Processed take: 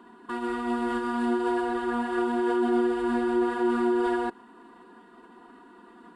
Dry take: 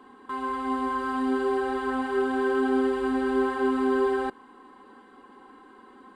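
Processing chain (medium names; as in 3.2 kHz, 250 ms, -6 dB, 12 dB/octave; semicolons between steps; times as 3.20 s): formant-preserving pitch shift -1.5 st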